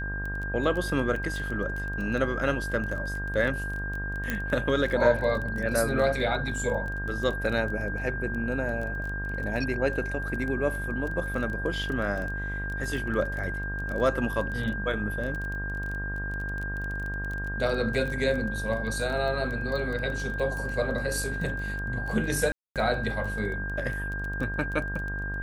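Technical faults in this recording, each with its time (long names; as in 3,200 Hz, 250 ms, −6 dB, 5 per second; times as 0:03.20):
mains buzz 50 Hz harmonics 27 −34 dBFS
surface crackle 15 per second −32 dBFS
whistle 1,600 Hz −33 dBFS
0:04.30: click −14 dBFS
0:22.52–0:22.76: drop-out 237 ms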